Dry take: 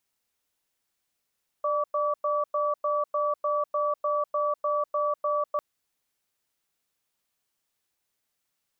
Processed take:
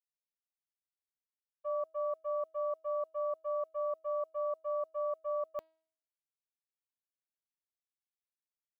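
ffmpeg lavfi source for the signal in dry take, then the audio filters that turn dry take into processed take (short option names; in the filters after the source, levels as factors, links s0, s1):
-f lavfi -i "aevalsrc='0.0501*(sin(2*PI*594*t)+sin(2*PI*1150*t))*clip(min(mod(t,0.3),0.2-mod(t,0.3))/0.005,0,1)':d=3.95:s=44100"
-af "agate=range=0.0224:threshold=0.0891:ratio=3:detection=peak,equalizer=f=1300:t=o:w=0.47:g=-13.5,bandreject=f=320.3:t=h:w=4,bandreject=f=640.6:t=h:w=4,bandreject=f=960.9:t=h:w=4,bandreject=f=1281.2:t=h:w=4,bandreject=f=1601.5:t=h:w=4,bandreject=f=1921.8:t=h:w=4,bandreject=f=2242.1:t=h:w=4,bandreject=f=2562.4:t=h:w=4,bandreject=f=2882.7:t=h:w=4,bandreject=f=3203:t=h:w=4,bandreject=f=3523.3:t=h:w=4,bandreject=f=3843.6:t=h:w=4,bandreject=f=4163.9:t=h:w=4,bandreject=f=4484.2:t=h:w=4,bandreject=f=4804.5:t=h:w=4"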